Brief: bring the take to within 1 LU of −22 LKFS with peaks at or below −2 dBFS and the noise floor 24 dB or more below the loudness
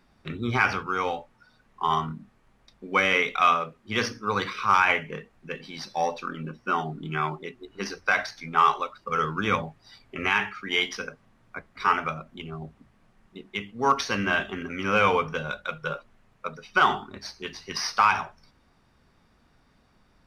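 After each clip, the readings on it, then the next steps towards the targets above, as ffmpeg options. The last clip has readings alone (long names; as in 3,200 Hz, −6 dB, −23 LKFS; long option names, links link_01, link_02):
integrated loudness −26.0 LKFS; sample peak −8.0 dBFS; target loudness −22.0 LKFS
→ -af "volume=4dB"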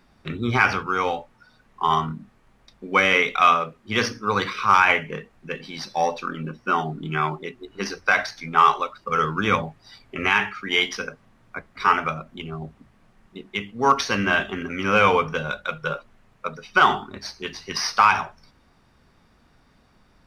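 integrated loudness −22.0 LKFS; sample peak −4.0 dBFS; background noise floor −59 dBFS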